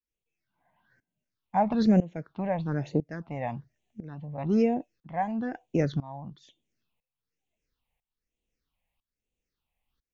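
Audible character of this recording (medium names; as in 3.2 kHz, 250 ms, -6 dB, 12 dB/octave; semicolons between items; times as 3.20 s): tremolo saw up 1 Hz, depth 90%; phasing stages 6, 1.1 Hz, lowest notch 360–1400 Hz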